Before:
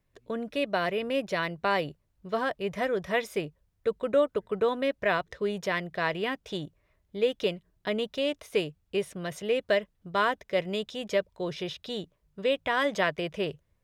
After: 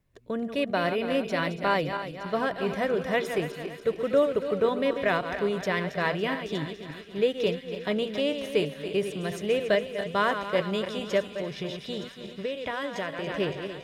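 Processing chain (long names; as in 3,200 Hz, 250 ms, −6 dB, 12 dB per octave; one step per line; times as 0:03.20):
feedback delay that plays each chunk backwards 141 ms, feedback 68%, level −8.5 dB
parametric band 130 Hz +4 dB 2.9 octaves
0:11.26–0:13.27: downward compressor, threshold −29 dBFS, peak gain reduction 9.5 dB
delay with a high-pass on its return 917 ms, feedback 74%, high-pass 2,800 Hz, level −12 dB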